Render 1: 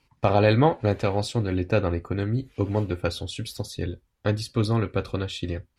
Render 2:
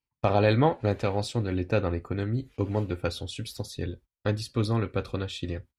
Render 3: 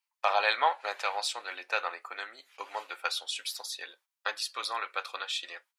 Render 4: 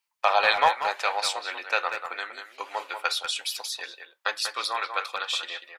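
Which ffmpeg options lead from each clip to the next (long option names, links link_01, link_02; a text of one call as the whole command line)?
ffmpeg -i in.wav -af "agate=range=-22dB:threshold=-44dB:ratio=16:detection=peak,volume=-3dB" out.wav
ffmpeg -i in.wav -af "highpass=frequency=840:width=0.5412,highpass=frequency=840:width=1.3066,volume=5dB" out.wav
ffmpeg -i in.wav -filter_complex "[0:a]asplit=2[link_01][link_02];[link_02]adelay=190,highpass=300,lowpass=3400,asoftclip=type=hard:threshold=-21dB,volume=-7dB[link_03];[link_01][link_03]amix=inputs=2:normalize=0,volume=5dB" out.wav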